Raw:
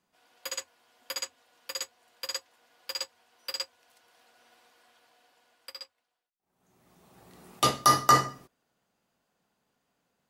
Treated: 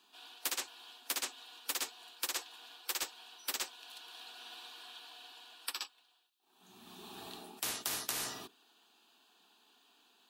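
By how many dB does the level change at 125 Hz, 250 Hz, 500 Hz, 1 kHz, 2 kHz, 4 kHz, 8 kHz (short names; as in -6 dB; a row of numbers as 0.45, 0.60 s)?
-22.5, -13.0, -13.5, -19.0, -6.0, -5.0, -3.5 dB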